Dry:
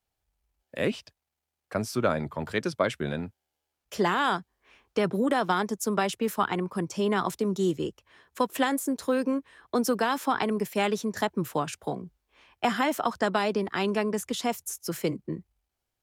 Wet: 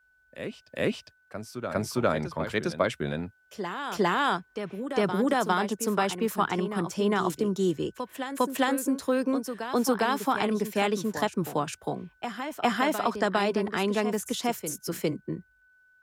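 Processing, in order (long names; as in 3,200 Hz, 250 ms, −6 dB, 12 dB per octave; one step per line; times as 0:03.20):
steady tone 1,500 Hz −59 dBFS
backwards echo 405 ms −9 dB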